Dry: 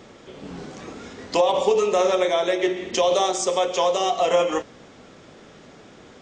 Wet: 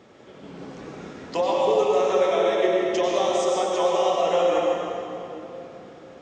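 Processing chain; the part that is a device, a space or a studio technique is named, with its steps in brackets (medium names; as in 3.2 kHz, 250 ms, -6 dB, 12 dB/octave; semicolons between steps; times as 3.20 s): high-pass 100 Hz 6 dB/octave; swimming-pool hall (reverberation RT60 3.2 s, pre-delay 88 ms, DRR -3 dB; treble shelf 3.6 kHz -7 dB); trim -5 dB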